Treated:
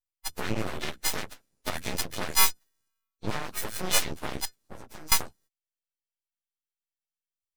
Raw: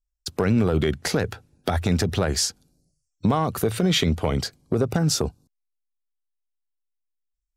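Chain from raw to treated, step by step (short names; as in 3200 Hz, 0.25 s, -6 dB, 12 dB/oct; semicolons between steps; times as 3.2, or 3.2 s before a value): frequency quantiser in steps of 3 st; 4.45–5.12 compressor 16:1, threshold -26 dBFS, peak gain reduction 13.5 dB; added harmonics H 3 -12 dB, 6 -18 dB, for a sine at -1 dBFS; full-wave rectifier; gain -1 dB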